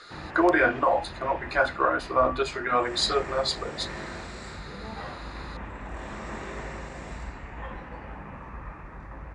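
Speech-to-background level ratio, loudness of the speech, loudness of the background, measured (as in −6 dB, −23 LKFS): 14.0 dB, −25.5 LKFS, −39.5 LKFS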